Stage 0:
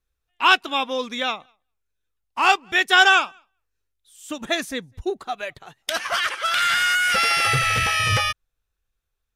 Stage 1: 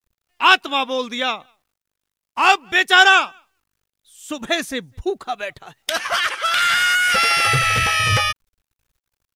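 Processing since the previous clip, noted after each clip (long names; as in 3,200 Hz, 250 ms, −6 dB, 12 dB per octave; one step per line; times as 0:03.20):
bit-depth reduction 12 bits, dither none
level +3 dB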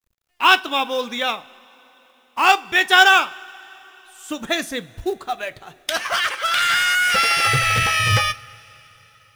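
coupled-rooms reverb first 0.24 s, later 4.1 s, from −22 dB, DRR 12.5 dB
log-companded quantiser 6 bits
level −1 dB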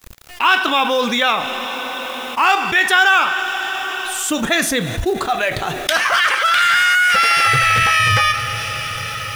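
dynamic equaliser 1,500 Hz, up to +6 dB, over −29 dBFS, Q 0.87
envelope flattener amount 70%
level −7 dB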